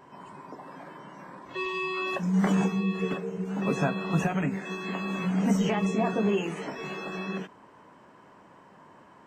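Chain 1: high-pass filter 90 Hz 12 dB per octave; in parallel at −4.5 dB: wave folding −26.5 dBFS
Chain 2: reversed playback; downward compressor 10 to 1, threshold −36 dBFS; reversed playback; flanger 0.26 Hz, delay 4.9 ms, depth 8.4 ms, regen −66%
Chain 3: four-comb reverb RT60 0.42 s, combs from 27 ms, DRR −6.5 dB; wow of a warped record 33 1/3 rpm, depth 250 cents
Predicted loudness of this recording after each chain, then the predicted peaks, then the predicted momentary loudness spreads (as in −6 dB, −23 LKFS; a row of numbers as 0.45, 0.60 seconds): −26.5, −44.5, −22.0 LKFS; −12.5, −31.0, −5.5 dBFS; 17, 16, 19 LU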